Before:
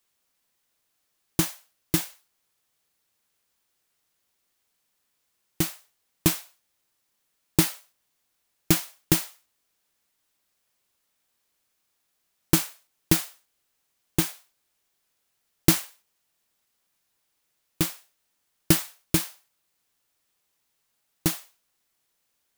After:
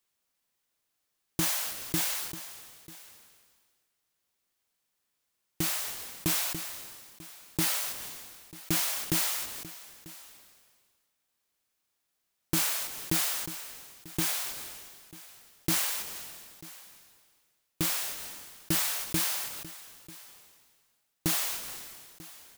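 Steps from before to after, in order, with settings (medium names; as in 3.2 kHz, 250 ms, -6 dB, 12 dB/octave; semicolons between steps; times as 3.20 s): peak limiter -9.5 dBFS, peak gain reduction 8 dB; delay 942 ms -19.5 dB; decay stretcher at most 33 dB/s; trim -5 dB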